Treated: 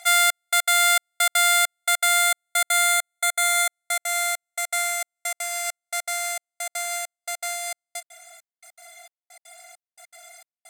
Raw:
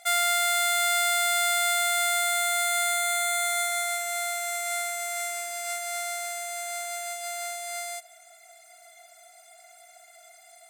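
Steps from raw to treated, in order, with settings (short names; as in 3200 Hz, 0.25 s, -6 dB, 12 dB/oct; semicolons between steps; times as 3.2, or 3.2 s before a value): HPF 700 Hz 24 dB/oct; step gate "xxxx...x." 200 bpm -60 dB; gain +6.5 dB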